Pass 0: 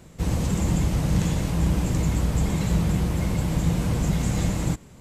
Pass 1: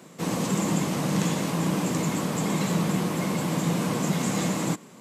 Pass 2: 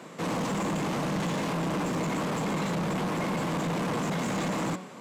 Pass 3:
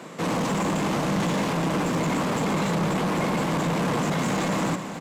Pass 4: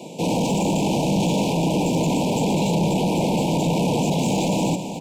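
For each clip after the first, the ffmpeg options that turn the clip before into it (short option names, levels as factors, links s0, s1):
-af "highpass=f=180:w=0.5412,highpass=f=180:w=1.3066,equalizer=f=1100:w=6:g=5.5,volume=1.41"
-filter_complex "[0:a]bandreject=f=185.2:t=h:w=4,bandreject=f=370.4:t=h:w=4,bandreject=f=555.6:t=h:w=4,bandreject=f=740.8:t=h:w=4,bandreject=f=926:t=h:w=4,bandreject=f=1111.2:t=h:w=4,bandreject=f=1296.4:t=h:w=4,bandreject=f=1481.6:t=h:w=4,bandreject=f=1666.8:t=h:w=4,bandreject=f=1852:t=h:w=4,bandreject=f=2037.2:t=h:w=4,bandreject=f=2222.4:t=h:w=4,bandreject=f=2407.6:t=h:w=4,bandreject=f=2592.8:t=h:w=4,bandreject=f=2778:t=h:w=4,bandreject=f=2963.2:t=h:w=4,bandreject=f=3148.4:t=h:w=4,bandreject=f=3333.6:t=h:w=4,bandreject=f=3518.8:t=h:w=4,bandreject=f=3704:t=h:w=4,bandreject=f=3889.2:t=h:w=4,bandreject=f=4074.4:t=h:w=4,bandreject=f=4259.6:t=h:w=4,bandreject=f=4444.8:t=h:w=4,bandreject=f=4630:t=h:w=4,bandreject=f=4815.2:t=h:w=4,bandreject=f=5000.4:t=h:w=4,bandreject=f=5185.6:t=h:w=4,bandreject=f=5370.8:t=h:w=4,bandreject=f=5556:t=h:w=4,asoftclip=type=tanh:threshold=0.0422,asplit=2[s0][s1];[s1]highpass=f=720:p=1,volume=2.51,asoftclip=type=tanh:threshold=0.0422[s2];[s0][s2]amix=inputs=2:normalize=0,lowpass=f=1900:p=1,volume=0.501,volume=1.78"
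-af "aecho=1:1:268|536|804|1072|1340|1608|1876:0.266|0.157|0.0926|0.0546|0.0322|0.019|0.0112,volume=1.68"
-af "asuperstop=centerf=1500:order=20:qfactor=1.1,volume=1.68"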